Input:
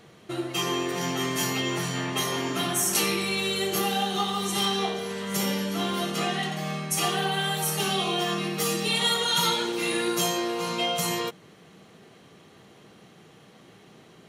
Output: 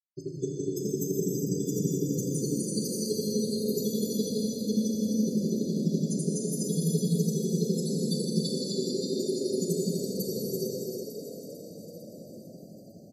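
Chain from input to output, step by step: elliptic band-stop 370–4600 Hz, stop band 40 dB; peaking EQ 150 Hz +6 dB 1.4 oct; de-hum 96.74 Hz, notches 3; peak limiter -22.5 dBFS, peak gain reduction 8.5 dB; granulator 49 ms, grains 11 per s, spray 430 ms, pitch spread up and down by 0 st; loudest bins only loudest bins 32; on a send: frequency-shifting echo 489 ms, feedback 62%, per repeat +32 Hz, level -9.5 dB; on the sum: gated-style reverb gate 470 ms flat, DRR -3.5 dB; speed mistake 44.1 kHz file played as 48 kHz; trim +4 dB

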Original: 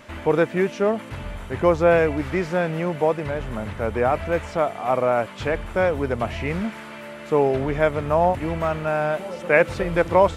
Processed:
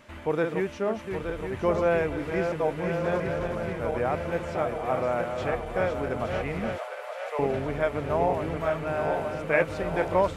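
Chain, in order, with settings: backward echo that repeats 435 ms, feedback 79%, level -6 dB; 2.52–3.20 s: reverse; 6.78–7.39 s: steep high-pass 510 Hz 48 dB/octave; trim -7.5 dB

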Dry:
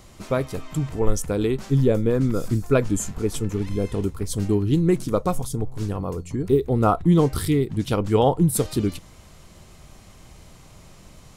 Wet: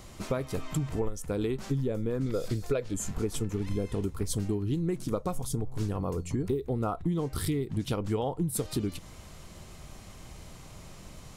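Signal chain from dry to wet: 2.26–2.94 s: ten-band graphic EQ 250 Hz -5 dB, 500 Hz +10 dB, 1 kHz -3 dB, 2 kHz +4 dB, 4 kHz +9 dB; compression 12:1, threshold -26 dBFS, peak gain reduction 18.5 dB

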